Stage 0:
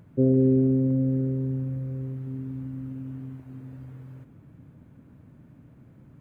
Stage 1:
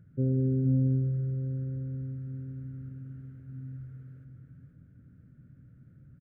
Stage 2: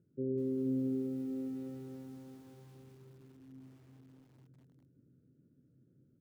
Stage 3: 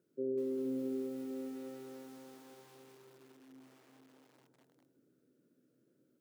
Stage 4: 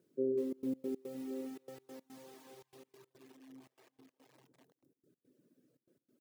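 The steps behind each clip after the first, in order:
drawn EQ curve 150 Hz 0 dB, 290 Hz −9 dB, 540 Hz −10 dB, 980 Hz −28 dB, 1,400 Hz −1 dB, 2,500 Hz −14 dB; on a send: single-tap delay 473 ms −6 dB; on the sum: level −2.5 dB
resonant band-pass 370 Hz, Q 2.9; on a send at −8 dB: convolution reverb RT60 4.0 s, pre-delay 49 ms; on the sum: feedback echo at a low word length 202 ms, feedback 80%, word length 10 bits, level −10 dB
high-pass filter 480 Hz 12 dB per octave; delay with a low-pass on its return 60 ms, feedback 69%, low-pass 800 Hz, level −11.5 dB; level +6.5 dB
reverb reduction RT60 0.95 s; notch filter 1,400 Hz, Q 7.2; gate pattern "xxxxx.x.x." 143 BPM −24 dB; level +4 dB

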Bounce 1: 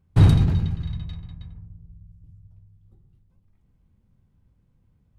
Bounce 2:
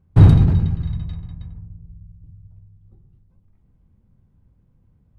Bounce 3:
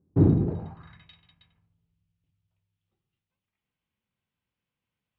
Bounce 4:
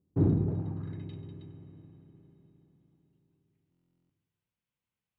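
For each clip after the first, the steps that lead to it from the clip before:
high-shelf EQ 2,200 Hz −11.5 dB; level +5 dB
band-pass filter sweep 320 Hz → 2,900 Hz, 0:00.39–0:01.11; every ending faded ahead of time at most 290 dB per second; level +3.5 dB
convolution reverb RT60 4.5 s, pre-delay 50 ms, DRR 9 dB; buffer that repeats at 0:03.70, samples 1,024, times 16; level −6.5 dB

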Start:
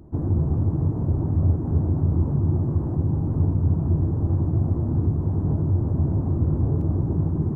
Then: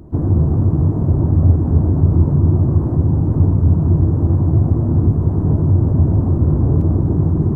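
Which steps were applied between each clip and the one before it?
notch filter 830 Hz, Q 23
on a send at −11.5 dB: convolution reverb RT60 0.90 s, pre-delay 100 ms
on the sum: level +7.5 dB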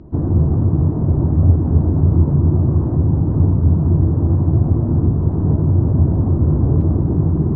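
high-frequency loss of the air 160 metres
mains-hum notches 50/100 Hz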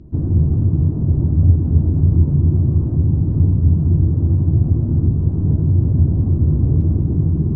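parametric band 960 Hz −13.5 dB 2.7 octaves
level +1 dB

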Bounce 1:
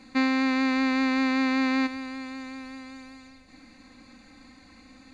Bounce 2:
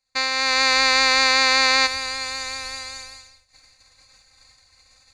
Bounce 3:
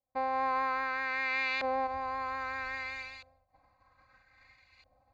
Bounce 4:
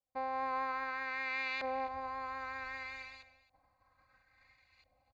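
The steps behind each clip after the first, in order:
automatic gain control gain up to 8 dB; downward expander −32 dBFS; drawn EQ curve 120 Hz 0 dB, 250 Hz −27 dB, 500 Hz −4 dB, 3,000 Hz +1 dB, 5,000 Hz +12 dB; level +4 dB
notch comb filter 450 Hz; auto-filter low-pass saw up 0.62 Hz 610–2,900 Hz; brickwall limiter −18.5 dBFS, peak gain reduction 13 dB; level −4.5 dB
single-tap delay 270 ms −17 dB; level −5.5 dB

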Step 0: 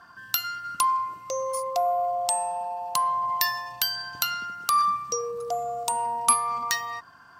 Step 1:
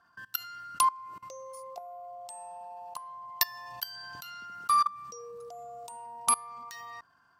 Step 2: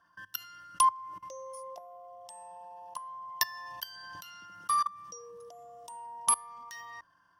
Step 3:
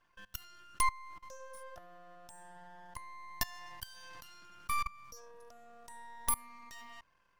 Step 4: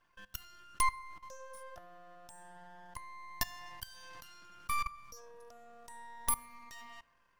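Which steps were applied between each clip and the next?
output level in coarse steps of 22 dB
EQ curve with evenly spaced ripples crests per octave 1.2, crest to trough 9 dB; level −3 dB
half-wave rectification; level −2 dB
dense smooth reverb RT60 1.4 s, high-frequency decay 0.45×, DRR 18.5 dB

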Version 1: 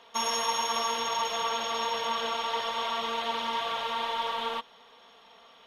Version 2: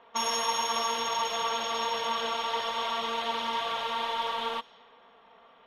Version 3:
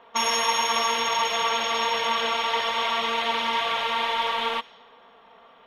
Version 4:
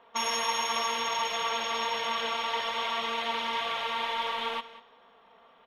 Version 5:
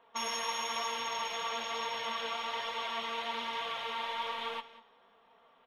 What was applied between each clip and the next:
low-pass that shuts in the quiet parts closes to 1,700 Hz, open at −30 dBFS
dynamic equaliser 2,200 Hz, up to +7 dB, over −51 dBFS, Q 2; level +4.5 dB
slap from a distant wall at 33 metres, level −16 dB; level −6 dB
flanger 1.1 Hz, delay 6.1 ms, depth 4.8 ms, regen +65%; level −1.5 dB

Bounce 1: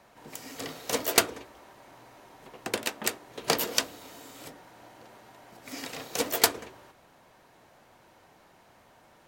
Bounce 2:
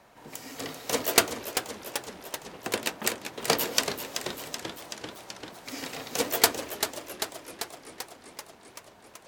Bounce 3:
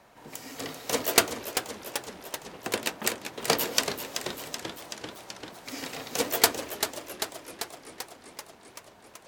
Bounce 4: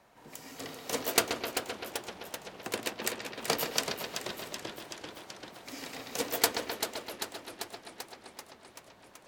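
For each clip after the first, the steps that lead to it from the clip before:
feedback echo with a swinging delay time 386 ms, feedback 71%, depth 196 cents, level −8.5 dB; level +1 dB
no processing that can be heard
bucket-brigade delay 129 ms, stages 4,096, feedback 76%, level −8 dB; level −5.5 dB

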